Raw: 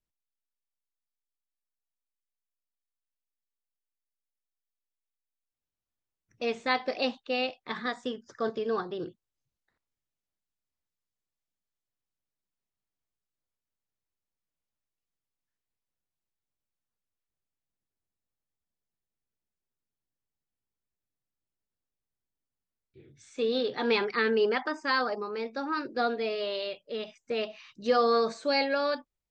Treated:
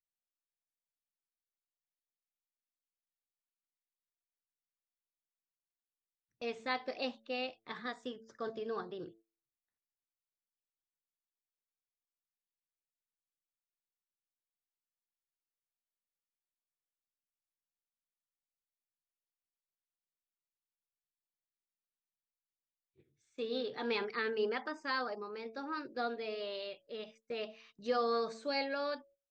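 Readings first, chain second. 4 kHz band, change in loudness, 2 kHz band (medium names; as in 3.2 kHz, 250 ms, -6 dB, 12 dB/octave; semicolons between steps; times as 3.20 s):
-8.5 dB, -8.5 dB, -8.5 dB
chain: de-hum 111.8 Hz, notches 6; gate -52 dBFS, range -12 dB; trim -8.5 dB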